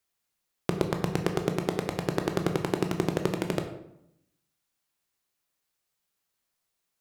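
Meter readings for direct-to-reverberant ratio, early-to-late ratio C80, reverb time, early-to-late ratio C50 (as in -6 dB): 4.5 dB, 10.0 dB, 0.80 s, 8.5 dB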